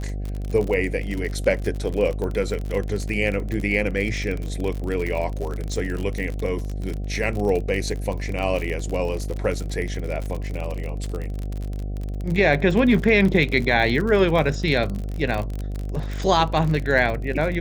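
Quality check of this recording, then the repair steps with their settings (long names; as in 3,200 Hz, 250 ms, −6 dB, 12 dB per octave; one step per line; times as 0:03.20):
mains buzz 50 Hz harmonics 15 −28 dBFS
surface crackle 45 per second −26 dBFS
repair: click removal
hum removal 50 Hz, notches 15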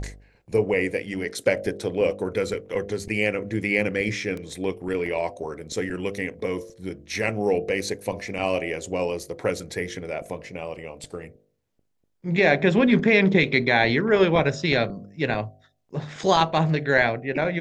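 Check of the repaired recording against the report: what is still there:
none of them is left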